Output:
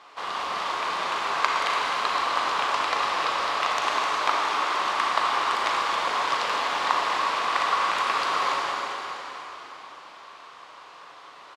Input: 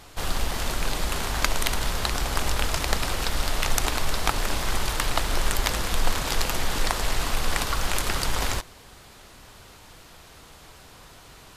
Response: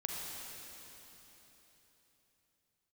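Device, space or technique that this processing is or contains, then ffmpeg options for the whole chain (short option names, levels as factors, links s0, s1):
station announcement: -filter_complex "[0:a]asettb=1/sr,asplit=3[s0][s1][s2];[s0]atrim=end=4.194[s3];[s1]atrim=start=4.19:end=4.82,asetpts=PTS-STARTPTS,afade=t=in:d=0.004:c=qsin,afade=t=out:st=0.626:d=0.004:c=qsin,highpass=f=190:w=0.5412,highpass=f=190:w=1.3066[s4];[s2]atrim=start=4.816[s5];[s3][s4]acrossfade=d=0.004:c1=hsin:c2=qsin[s6];[s6][s5]acrossfade=d=0.004:c1=qsin:c2=hsin,highpass=490,lowpass=3700,equalizer=f=1100:t=o:w=0.34:g=11,aecho=1:1:37.9|256.6:0.282|0.316[s7];[1:a]atrim=start_sample=2205[s8];[s7][s8]afir=irnorm=-1:irlink=0"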